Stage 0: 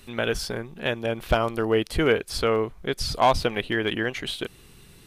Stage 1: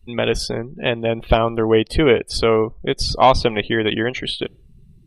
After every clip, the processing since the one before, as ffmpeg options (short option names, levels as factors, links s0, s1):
-af "afftdn=nr=29:nf=-41,equalizer=f=1500:t=o:w=0.31:g=-9,volume=2.24"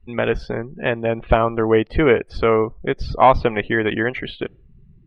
-af "lowpass=f=1800:t=q:w=1.5,volume=0.891"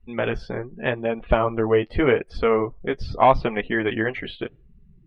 -af "flanger=delay=4.1:depth=6.9:regen=-30:speed=0.83:shape=sinusoidal"